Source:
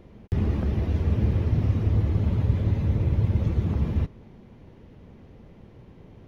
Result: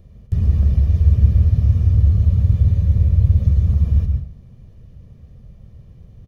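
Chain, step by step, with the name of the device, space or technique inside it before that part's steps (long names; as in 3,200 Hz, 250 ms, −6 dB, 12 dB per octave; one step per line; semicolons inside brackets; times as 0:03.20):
microphone above a desk (comb filter 1.7 ms, depth 53%; convolution reverb RT60 0.40 s, pre-delay 111 ms, DRR 5.5 dB)
bass and treble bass +14 dB, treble +13 dB
level −9.5 dB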